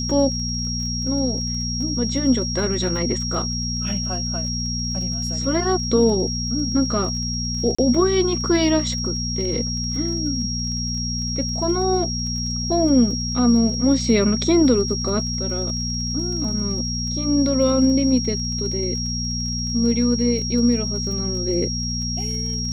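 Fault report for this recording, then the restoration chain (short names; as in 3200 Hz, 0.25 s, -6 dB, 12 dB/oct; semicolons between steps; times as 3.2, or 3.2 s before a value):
crackle 29/s -31 dBFS
hum 60 Hz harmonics 4 -27 dBFS
tone 5600 Hz -26 dBFS
7.75–7.79 gap 35 ms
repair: de-click; de-hum 60 Hz, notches 4; notch 5600 Hz, Q 30; interpolate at 7.75, 35 ms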